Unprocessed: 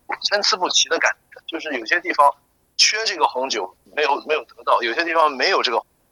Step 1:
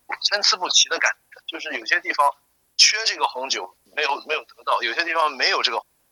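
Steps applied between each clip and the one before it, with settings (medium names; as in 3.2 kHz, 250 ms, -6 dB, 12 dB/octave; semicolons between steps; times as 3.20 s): tilt shelf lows -5.5 dB; trim -4 dB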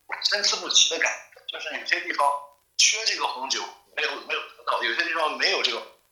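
touch-sensitive flanger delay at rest 2.4 ms, full sweep at -15 dBFS; crackle 23 per s -45 dBFS; Schroeder reverb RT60 0.37 s, combs from 31 ms, DRR 6.5 dB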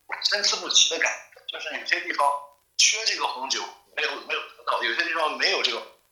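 no audible change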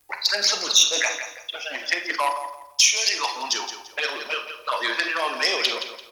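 treble shelf 6.3 kHz +6 dB; on a send: feedback delay 170 ms, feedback 28%, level -10 dB; on the sum: transformer saturation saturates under 3.4 kHz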